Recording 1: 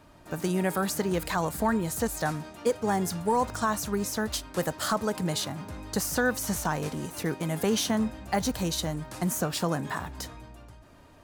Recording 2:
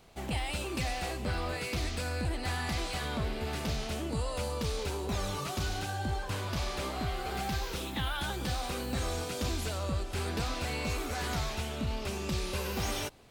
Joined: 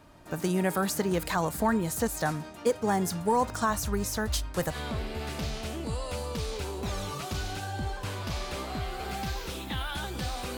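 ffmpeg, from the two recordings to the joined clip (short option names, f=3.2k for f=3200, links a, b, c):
-filter_complex "[0:a]asplit=3[a][b][c];[a]afade=t=out:st=3.69:d=0.02[d];[b]asubboost=boost=5.5:cutoff=96,afade=t=in:st=3.69:d=0.02,afade=t=out:st=4.77:d=0.02[e];[c]afade=t=in:st=4.77:d=0.02[f];[d][e][f]amix=inputs=3:normalize=0,apad=whole_dur=10.57,atrim=end=10.57,atrim=end=4.77,asetpts=PTS-STARTPTS[g];[1:a]atrim=start=2.93:end=8.83,asetpts=PTS-STARTPTS[h];[g][h]acrossfade=d=0.1:c1=tri:c2=tri"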